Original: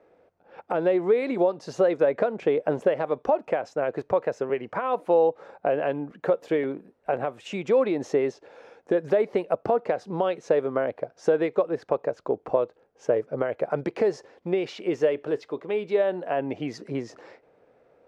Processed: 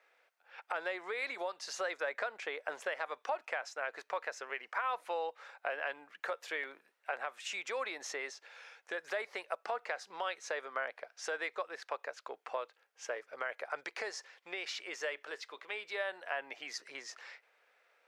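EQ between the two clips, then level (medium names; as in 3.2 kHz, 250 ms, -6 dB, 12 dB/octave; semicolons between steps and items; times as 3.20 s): Chebyshev high-pass 2 kHz, order 2; dynamic bell 2.8 kHz, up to -7 dB, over -55 dBFS, Q 1.5; +5.0 dB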